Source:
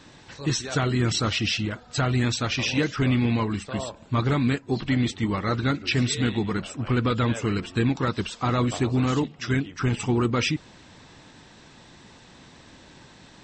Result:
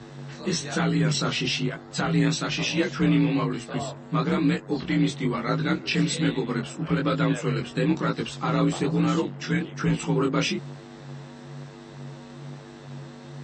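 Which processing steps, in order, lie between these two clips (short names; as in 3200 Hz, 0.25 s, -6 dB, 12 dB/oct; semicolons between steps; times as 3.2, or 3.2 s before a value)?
buzz 100 Hz, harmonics 20, -39 dBFS -7 dB/oct; frequency shift +41 Hz; chorus 1.1 Hz, delay 17.5 ms, depth 7.1 ms; gain +2 dB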